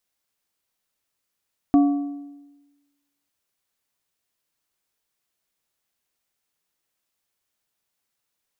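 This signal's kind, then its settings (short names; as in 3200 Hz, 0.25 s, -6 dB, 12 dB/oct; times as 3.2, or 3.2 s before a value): metal hit plate, lowest mode 285 Hz, modes 3, decay 1.17 s, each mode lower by 11 dB, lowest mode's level -10.5 dB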